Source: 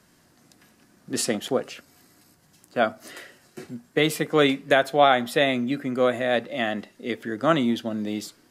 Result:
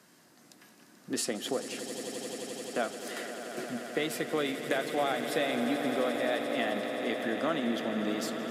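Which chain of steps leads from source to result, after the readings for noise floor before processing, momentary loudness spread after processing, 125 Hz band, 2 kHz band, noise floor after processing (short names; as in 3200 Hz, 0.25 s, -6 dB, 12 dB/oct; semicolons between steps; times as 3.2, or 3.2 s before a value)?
-60 dBFS, 8 LU, -12.0 dB, -7.5 dB, -60 dBFS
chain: HPF 190 Hz 12 dB/oct; compressor 4:1, threshold -30 dBFS, peak gain reduction 15 dB; swelling echo 87 ms, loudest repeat 8, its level -13 dB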